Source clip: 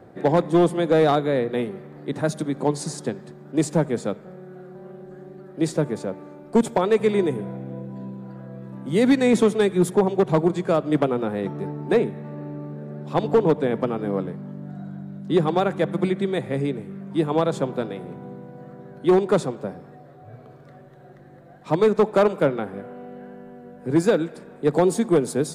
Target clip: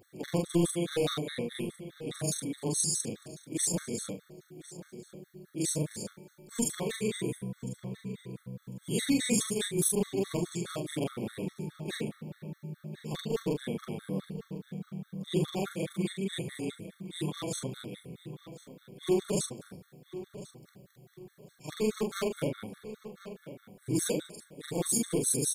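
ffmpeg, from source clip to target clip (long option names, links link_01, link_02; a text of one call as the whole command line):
ffmpeg -i in.wav -filter_complex "[0:a]afftfilt=real='re':imag='-im':win_size=4096:overlap=0.75,equalizer=frequency=880:width_type=o:width=2.4:gain=-13.5,crystalizer=i=4.5:c=0,asplit=2[link_01][link_02];[link_02]adelay=1048,lowpass=frequency=3800:poles=1,volume=-14dB,asplit=2[link_03][link_04];[link_04]adelay=1048,lowpass=frequency=3800:poles=1,volume=0.31,asplit=2[link_05][link_06];[link_06]adelay=1048,lowpass=frequency=3800:poles=1,volume=0.31[link_07];[link_01][link_03][link_05][link_07]amix=inputs=4:normalize=0,afftfilt=real='re*gt(sin(2*PI*4.8*pts/sr)*(1-2*mod(floor(b*sr/1024/1100),2)),0)':imag='im*gt(sin(2*PI*4.8*pts/sr)*(1-2*mod(floor(b*sr/1024/1100),2)),0)':win_size=1024:overlap=0.75" out.wav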